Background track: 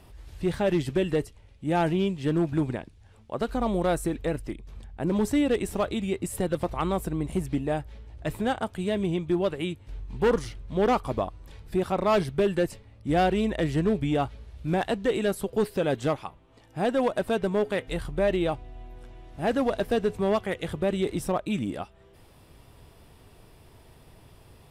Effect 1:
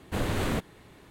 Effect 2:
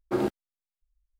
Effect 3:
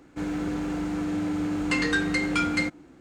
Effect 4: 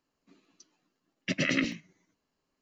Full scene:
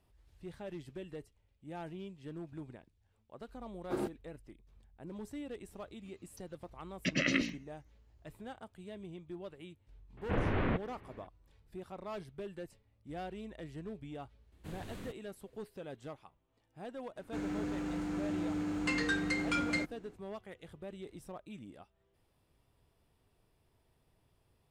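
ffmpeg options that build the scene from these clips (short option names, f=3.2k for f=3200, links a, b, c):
-filter_complex "[1:a]asplit=2[a][b];[0:a]volume=-20dB[c];[a]lowpass=f=2.6k:w=0.5412,lowpass=f=2.6k:w=1.3066[d];[b]equalizer=f=1k:w=0.53:g=-4.5[e];[2:a]atrim=end=1.19,asetpts=PTS-STARTPTS,volume=-9.5dB,afade=t=in:d=0.004:c=hsin,afade=t=out:st=1.186:d=0.004:c=hsin,adelay=3790[f];[4:a]atrim=end=2.61,asetpts=PTS-STARTPTS,volume=-3dB,afade=t=in:d=0.004:c=hsin,afade=t=out:st=2.606:d=0.004:c=hsin,adelay=254457S[g];[d]atrim=end=1.1,asetpts=PTS-STARTPTS,volume=-3dB,afade=t=in:d=0.004:c=hsin,afade=t=out:st=1.096:d=0.004:c=hsin,adelay=10170[h];[e]atrim=end=1.1,asetpts=PTS-STARTPTS,volume=-17dB,afade=t=in:d=0.004:c=hsin,afade=t=out:st=1.096:d=0.004:c=hsin,adelay=14520[i];[3:a]atrim=end=3,asetpts=PTS-STARTPTS,volume=-8dB,afade=t=in:d=0.004:c=hsin,afade=t=out:st=2.996:d=0.004:c=hsin,adelay=756756S[j];[c][f][g][h][i][j]amix=inputs=6:normalize=0"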